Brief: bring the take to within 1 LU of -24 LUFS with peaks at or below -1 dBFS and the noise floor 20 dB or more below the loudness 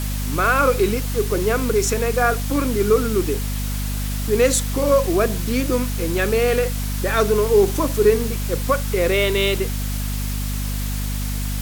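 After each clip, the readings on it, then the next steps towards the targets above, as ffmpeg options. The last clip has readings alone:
hum 50 Hz; harmonics up to 250 Hz; hum level -22 dBFS; noise floor -24 dBFS; noise floor target -40 dBFS; loudness -20.0 LUFS; peak -4.0 dBFS; loudness target -24.0 LUFS
-> -af "bandreject=f=50:t=h:w=6,bandreject=f=100:t=h:w=6,bandreject=f=150:t=h:w=6,bandreject=f=200:t=h:w=6,bandreject=f=250:t=h:w=6"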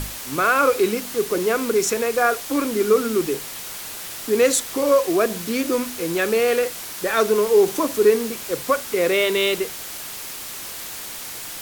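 hum none; noise floor -34 dBFS; noise floor target -41 dBFS
-> -af "afftdn=nr=7:nf=-34"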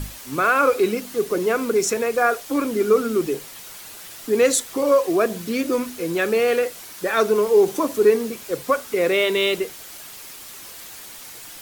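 noise floor -39 dBFS; noise floor target -41 dBFS
-> -af "afftdn=nr=6:nf=-39"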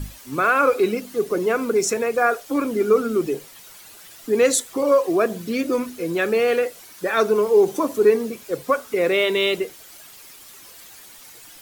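noise floor -45 dBFS; loudness -20.5 LUFS; peak -5.5 dBFS; loudness target -24.0 LUFS
-> -af "volume=-3.5dB"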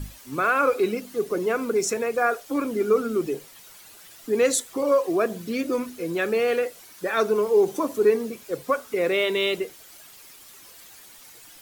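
loudness -24.0 LUFS; peak -9.0 dBFS; noise floor -48 dBFS

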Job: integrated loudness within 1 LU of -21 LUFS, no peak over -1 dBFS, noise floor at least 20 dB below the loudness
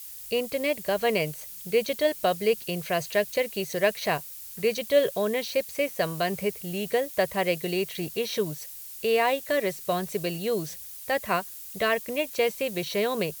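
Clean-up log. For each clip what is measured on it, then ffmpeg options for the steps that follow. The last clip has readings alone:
noise floor -42 dBFS; noise floor target -48 dBFS; loudness -27.5 LUFS; peak -10.0 dBFS; loudness target -21.0 LUFS
-> -af "afftdn=nr=6:nf=-42"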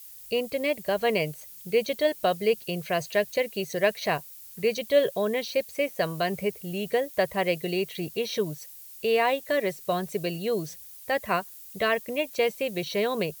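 noise floor -46 dBFS; noise floor target -48 dBFS
-> -af "afftdn=nr=6:nf=-46"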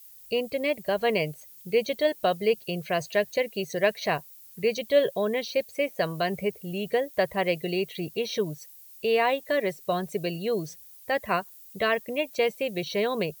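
noise floor -50 dBFS; loudness -27.5 LUFS; peak -10.5 dBFS; loudness target -21.0 LUFS
-> -af "volume=6.5dB"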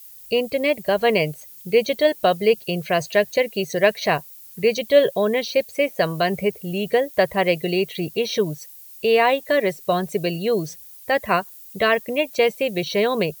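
loudness -21.0 LUFS; peak -4.0 dBFS; noise floor -43 dBFS

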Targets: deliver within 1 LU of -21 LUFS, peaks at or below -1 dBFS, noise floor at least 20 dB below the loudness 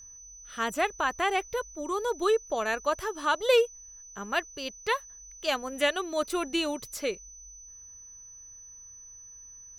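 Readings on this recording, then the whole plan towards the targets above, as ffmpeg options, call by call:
steady tone 6000 Hz; tone level -46 dBFS; loudness -29.0 LUFS; peak -12.0 dBFS; loudness target -21.0 LUFS
-> -af "bandreject=f=6k:w=30"
-af "volume=8dB"

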